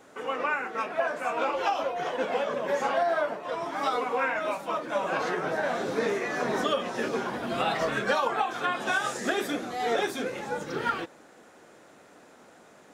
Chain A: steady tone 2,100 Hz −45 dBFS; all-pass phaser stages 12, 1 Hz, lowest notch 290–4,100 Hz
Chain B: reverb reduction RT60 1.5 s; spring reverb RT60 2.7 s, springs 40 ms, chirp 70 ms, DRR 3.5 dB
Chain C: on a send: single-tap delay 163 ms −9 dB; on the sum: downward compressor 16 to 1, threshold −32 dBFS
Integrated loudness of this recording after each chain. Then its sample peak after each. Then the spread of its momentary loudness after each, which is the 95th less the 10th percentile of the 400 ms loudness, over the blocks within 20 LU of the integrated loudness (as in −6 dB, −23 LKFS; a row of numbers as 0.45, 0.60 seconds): −31.0, −29.0, −36.0 LKFS; −14.5, −13.5, −22.0 dBFS; 19, 6, 17 LU